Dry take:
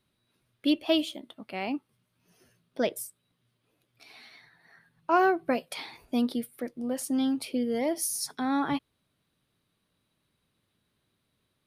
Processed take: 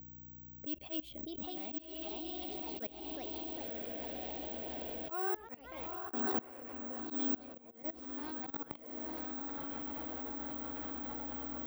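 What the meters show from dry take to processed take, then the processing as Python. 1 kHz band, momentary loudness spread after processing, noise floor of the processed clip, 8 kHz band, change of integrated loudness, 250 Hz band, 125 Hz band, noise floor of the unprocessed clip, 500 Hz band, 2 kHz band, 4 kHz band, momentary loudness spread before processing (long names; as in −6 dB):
−12.0 dB, 8 LU, −54 dBFS, below −25 dB, −10.5 dB, −12.0 dB, −4.0 dB, −77 dBFS, −12.0 dB, −12.5 dB, −12.0 dB, 15 LU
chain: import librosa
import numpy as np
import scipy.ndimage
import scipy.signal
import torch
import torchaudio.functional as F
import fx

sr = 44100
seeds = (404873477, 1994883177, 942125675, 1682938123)

y = scipy.signal.medfilt(x, 3)
y = fx.add_hum(y, sr, base_hz=60, snr_db=20)
y = fx.env_lowpass(y, sr, base_hz=340.0, full_db=-22.5)
y = fx.echo_diffused(y, sr, ms=1027, feedback_pct=47, wet_db=-4)
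y = (np.kron(scipy.signal.resample_poly(y, 1, 2), np.eye(2)[0]) * 2)[:len(y)]
y = fx.echo_pitch(y, sr, ms=678, semitones=2, count=3, db_per_echo=-6.0)
y = fx.level_steps(y, sr, step_db=23)
y = fx.auto_swell(y, sr, attack_ms=341.0)
y = fx.band_squash(y, sr, depth_pct=70)
y = y * librosa.db_to_amplitude(1.5)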